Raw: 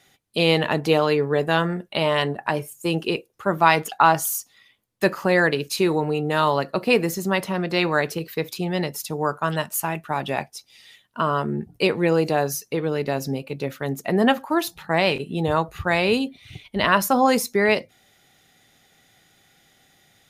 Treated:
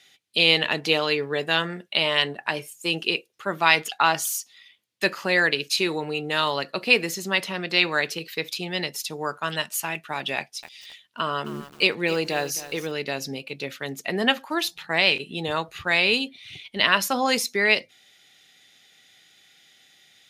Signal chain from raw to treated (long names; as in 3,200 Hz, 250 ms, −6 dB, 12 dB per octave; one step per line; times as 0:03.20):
meter weighting curve D
0:10.36–0:12.92: feedback echo at a low word length 265 ms, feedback 35%, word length 5 bits, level −13.5 dB
level −5.5 dB